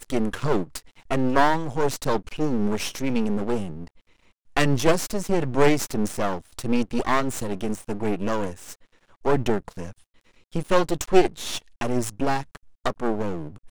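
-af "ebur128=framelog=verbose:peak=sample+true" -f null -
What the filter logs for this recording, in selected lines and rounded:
Integrated loudness:
  I:         -25.3 LUFS
  Threshold: -35.9 LUFS
Loudness range:
  LRA:         3.4 LU
  Threshold: -45.8 LUFS
  LRA low:   -27.8 LUFS
  LRA high:  -24.4 LUFS
Sample peak:
  Peak:       -2.5 dBFS
True peak:
  Peak:       -2.4 dBFS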